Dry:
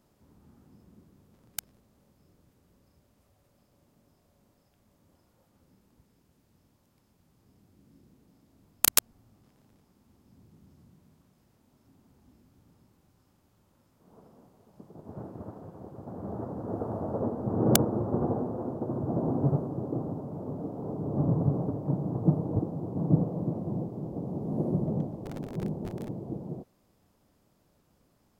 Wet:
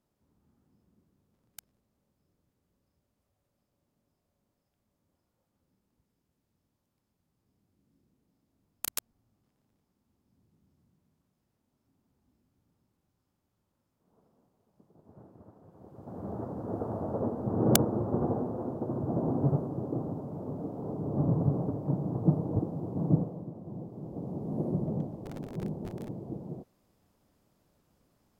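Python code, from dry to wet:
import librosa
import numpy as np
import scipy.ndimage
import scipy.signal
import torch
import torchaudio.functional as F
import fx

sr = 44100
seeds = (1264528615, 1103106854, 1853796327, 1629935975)

y = fx.gain(x, sr, db=fx.line((15.58, -12.5), (16.18, -1.0), (23.11, -1.0), (23.51, -11.5), (24.24, -2.5)))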